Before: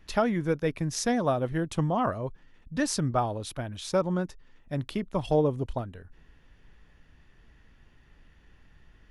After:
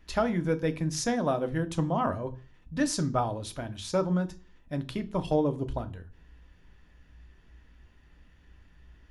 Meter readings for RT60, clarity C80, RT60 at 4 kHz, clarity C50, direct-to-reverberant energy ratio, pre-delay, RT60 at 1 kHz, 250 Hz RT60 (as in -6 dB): 0.40 s, 23.5 dB, 0.40 s, 19.0 dB, 8.0 dB, 3 ms, 0.40 s, 0.45 s